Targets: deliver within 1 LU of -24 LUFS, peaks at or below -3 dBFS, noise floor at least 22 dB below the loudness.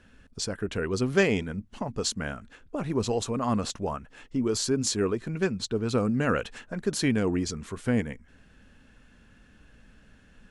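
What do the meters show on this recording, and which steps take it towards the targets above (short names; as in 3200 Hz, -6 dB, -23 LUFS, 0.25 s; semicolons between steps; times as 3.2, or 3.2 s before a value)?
loudness -28.5 LUFS; peak -9.5 dBFS; loudness target -24.0 LUFS
-> gain +4.5 dB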